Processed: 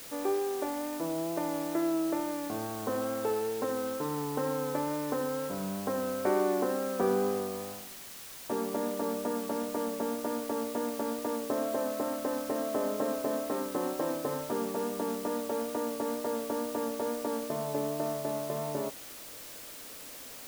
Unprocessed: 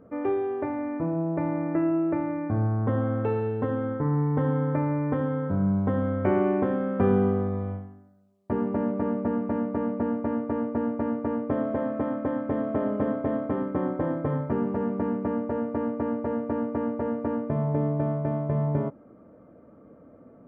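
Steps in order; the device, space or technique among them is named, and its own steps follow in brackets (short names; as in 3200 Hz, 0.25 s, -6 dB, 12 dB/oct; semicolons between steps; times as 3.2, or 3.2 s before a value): wax cylinder (BPF 360–2100 Hz; wow and flutter 25 cents; white noise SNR 13 dB); gain -1.5 dB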